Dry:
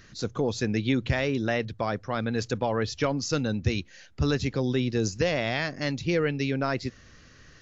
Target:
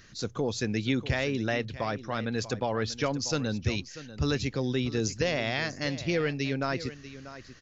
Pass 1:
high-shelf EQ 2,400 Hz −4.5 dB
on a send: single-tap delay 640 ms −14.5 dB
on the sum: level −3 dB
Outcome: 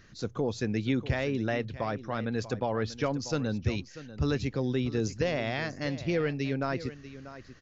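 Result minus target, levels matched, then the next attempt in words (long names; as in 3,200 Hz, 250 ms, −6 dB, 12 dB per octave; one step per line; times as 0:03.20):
4,000 Hz band −5.0 dB
high-shelf EQ 2,400 Hz +4 dB
on a send: single-tap delay 640 ms −14.5 dB
on the sum: level −3 dB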